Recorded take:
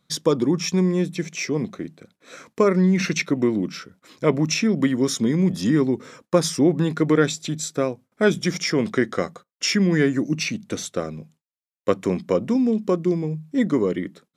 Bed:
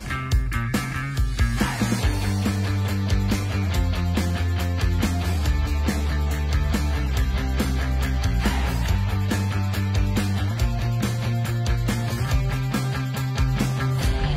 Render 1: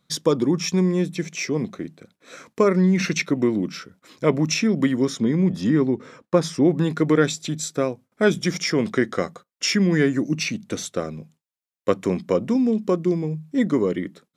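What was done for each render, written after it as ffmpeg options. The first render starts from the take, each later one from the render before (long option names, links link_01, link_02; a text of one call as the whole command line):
ffmpeg -i in.wav -filter_complex "[0:a]asettb=1/sr,asplit=3[link_01][link_02][link_03];[link_01]atrim=end=5.054[link_04];[link_02]atrim=start=5.05:end=6.65,asetpts=PTS-STARTPTS,afade=type=in:duration=0.004:curve=qsin,afade=type=out:start_time=1.596:duration=0.004:curve=qsin,lowpass=frequency=2900:poles=1[link_05];[link_03]atrim=start=6.646[link_06];[link_04][link_05]acrossfade=duration=0.004:curve1=hsin:curve2=qsin[link_07];[link_07][link_06]acrossfade=duration=0.004:curve1=qsin:curve2=hsin" out.wav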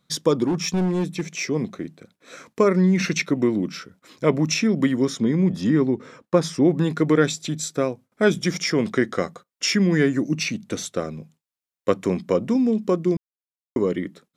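ffmpeg -i in.wav -filter_complex "[0:a]asettb=1/sr,asplit=3[link_01][link_02][link_03];[link_01]atrim=end=0.464[link_04];[link_02]atrim=start=0.46:end=1.38,asetpts=PTS-STARTPTS,afade=type=in:duration=0.004:curve=qsin,afade=type=out:start_time=0.916:duration=0.004:curve=qsin,asoftclip=type=hard:threshold=-18dB[link_05];[link_03]atrim=start=1.376[link_06];[link_04][link_05]acrossfade=duration=0.004:curve1=hsin:curve2=qsin[link_07];[link_07][link_06]acrossfade=duration=0.004:curve1=qsin:curve2=hsin,asplit=3[link_08][link_09][link_10];[link_08]atrim=end=13.17,asetpts=PTS-STARTPTS,afade=type=out:start_time=13.166:duration=0.004:curve=hsin[link_11];[link_09]atrim=start=13.17:end=13.76,asetpts=PTS-STARTPTS,volume=0[link_12];[link_10]atrim=start=13.76,asetpts=PTS-STARTPTS,afade=type=in:duration=0.004:curve=hsin[link_13];[link_11][link_12][link_13]concat=n=3:v=0:a=1" out.wav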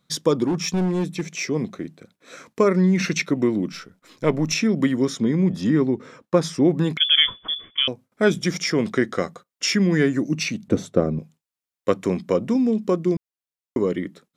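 ffmpeg -i in.wav -filter_complex "[0:a]asettb=1/sr,asplit=3[link_01][link_02][link_03];[link_01]atrim=end=3.724[link_04];[link_02]atrim=start=3.72:end=4.53,asetpts=PTS-STARTPTS,afade=type=in:duration=0.004:curve=qsin,afade=type=out:start_time=0.806:duration=0.004:curve=qsin,aeval=exprs='if(lt(val(0),0),0.708*val(0),val(0))':channel_layout=same[link_05];[link_03]atrim=start=4.526[link_06];[link_04][link_05]acrossfade=duration=0.004:curve1=hsin:curve2=qsin[link_07];[link_07][link_06]acrossfade=duration=0.004:curve1=qsin:curve2=hsin,asettb=1/sr,asplit=3[link_08][link_09][link_10];[link_08]atrim=end=6.974[link_11];[link_09]atrim=start=6.97:end=7.88,asetpts=PTS-STARTPTS,afade=type=in:duration=0.004:curve=qsin,afade=type=out:start_time=0.906:duration=0.004:curve=qsin,lowpass=frequency=3100:width_type=q:width=0.5098,lowpass=frequency=3100:width_type=q:width=0.6013,lowpass=frequency=3100:width_type=q:width=0.9,lowpass=frequency=3100:width_type=q:width=2.563,afreqshift=-3600[link_12];[link_10]atrim=start=7.876[link_13];[link_11][link_12]acrossfade=duration=0.004:curve1=hsin:curve2=qsin[link_14];[link_14][link_13]acrossfade=duration=0.004:curve1=qsin:curve2=hsin,asettb=1/sr,asplit=3[link_15][link_16][link_17];[link_15]atrim=end=10.684[link_18];[link_16]atrim=start=10.68:end=11.19,asetpts=PTS-STARTPTS,afade=type=in:duration=0.004:curve=qsin,afade=type=out:start_time=0.506:duration=0.004:curve=qsin,tiltshelf=frequency=1200:gain=10[link_19];[link_17]atrim=start=11.186[link_20];[link_18][link_19]acrossfade=duration=0.004:curve1=hsin:curve2=qsin[link_21];[link_21][link_20]acrossfade=duration=0.004:curve1=qsin:curve2=hsin" out.wav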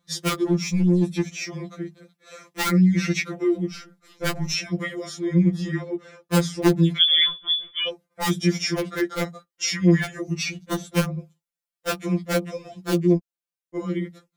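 ffmpeg -i in.wav -filter_complex "[0:a]acrossover=split=310|1200|3100[link_01][link_02][link_03][link_04];[link_02]aeval=exprs='(mod(5.62*val(0)+1,2)-1)/5.62':channel_layout=same[link_05];[link_01][link_05][link_03][link_04]amix=inputs=4:normalize=0,afftfilt=real='re*2.83*eq(mod(b,8),0)':imag='im*2.83*eq(mod(b,8),0)':win_size=2048:overlap=0.75" out.wav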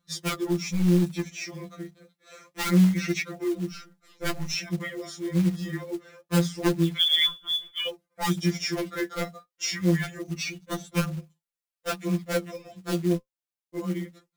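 ffmpeg -i in.wav -af "flanger=delay=0.7:depth=9.4:regen=55:speed=0.27:shape=sinusoidal,acrusher=bits=5:mode=log:mix=0:aa=0.000001" out.wav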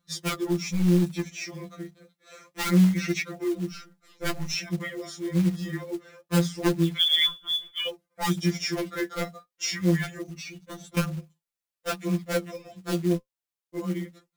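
ffmpeg -i in.wav -filter_complex "[0:a]asettb=1/sr,asplit=3[link_01][link_02][link_03];[link_01]atrim=end=10.294[link_04];[link_02]atrim=start=10.29:end=10.97,asetpts=PTS-STARTPTS,afade=type=in:duration=0.004:curve=qsin,afade=type=out:start_time=0.676:duration=0.004:curve=qsin,acompressor=threshold=-38dB:ratio=3:attack=3.2:release=140:knee=1:detection=peak[link_05];[link_03]atrim=start=10.966[link_06];[link_04][link_05]acrossfade=duration=0.004:curve1=hsin:curve2=qsin[link_07];[link_07][link_06]acrossfade=duration=0.004:curve1=qsin:curve2=hsin" out.wav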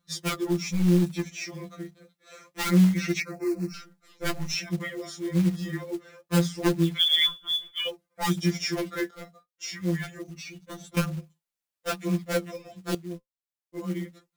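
ffmpeg -i in.wav -filter_complex "[0:a]asettb=1/sr,asplit=3[link_01][link_02][link_03];[link_01]atrim=end=3.204[link_04];[link_02]atrim=start=3.2:end=3.74,asetpts=PTS-STARTPTS,afade=type=in:duration=0.004:curve=qsin,afade=type=out:start_time=0.536:duration=0.004:curve=qsin,asuperstop=centerf=3300:order=8:qfactor=2.2[link_05];[link_03]atrim=start=3.736[link_06];[link_04][link_05]acrossfade=duration=0.004:curve1=hsin:curve2=qsin[link_07];[link_07][link_06]acrossfade=duration=0.004:curve1=qsin:curve2=hsin,asplit=3[link_08][link_09][link_10];[link_08]atrim=end=9.11,asetpts=PTS-STARTPTS,afade=type=out:start_time=9.106:duration=0.004:curve=hsin:silence=0.177828[link_11];[link_09]atrim=start=9.11:end=12.95,asetpts=PTS-STARTPTS,afade=type=in:duration=1.66:silence=0.177828,afade=type=out:start_time=3.836:duration=0.004:curve=hsin:silence=0.211349[link_12];[link_10]atrim=start=12.95,asetpts=PTS-STARTPTS,afade=type=in:duration=1.08:curve=qua:silence=0.211349[link_13];[link_11][link_12][link_13]concat=n=3:v=0:a=1" out.wav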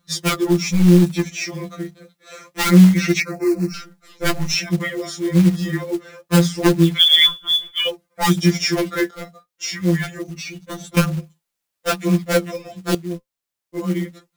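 ffmpeg -i in.wav -af "volume=9.5dB,alimiter=limit=-2dB:level=0:latency=1" out.wav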